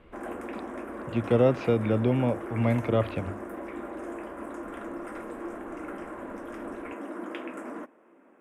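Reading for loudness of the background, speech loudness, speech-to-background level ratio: -38.5 LUFS, -26.5 LUFS, 12.0 dB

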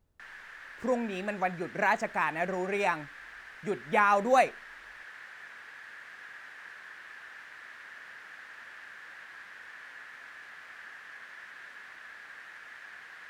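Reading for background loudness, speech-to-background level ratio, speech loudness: -46.0 LUFS, 17.0 dB, -29.0 LUFS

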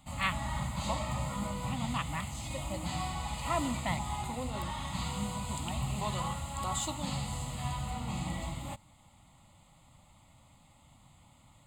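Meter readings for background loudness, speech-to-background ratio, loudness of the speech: -36.5 LUFS, -2.0 dB, -38.5 LUFS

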